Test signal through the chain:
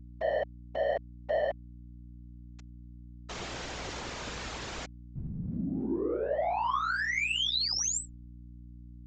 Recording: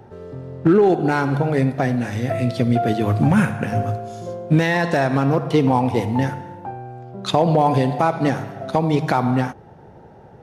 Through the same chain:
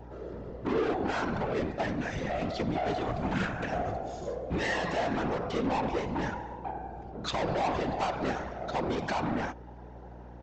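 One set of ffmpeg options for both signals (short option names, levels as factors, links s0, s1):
-af "bass=f=250:g=-9,treble=f=4000:g=-2,aeval=exprs='0.531*(cos(1*acos(clip(val(0)/0.531,-1,1)))-cos(1*PI/2))+0.0168*(cos(4*acos(clip(val(0)/0.531,-1,1)))-cos(4*PI/2))':c=same,aresample=16000,asoftclip=type=tanh:threshold=0.0668,aresample=44100,afftfilt=real='hypot(re,im)*cos(2*PI*random(0))':imag='hypot(re,im)*sin(2*PI*random(1))':win_size=512:overlap=0.75,aeval=exprs='val(0)+0.00355*(sin(2*PI*60*n/s)+sin(2*PI*2*60*n/s)/2+sin(2*PI*3*60*n/s)/3+sin(2*PI*4*60*n/s)/4+sin(2*PI*5*60*n/s)/5)':c=same,volume=1.33"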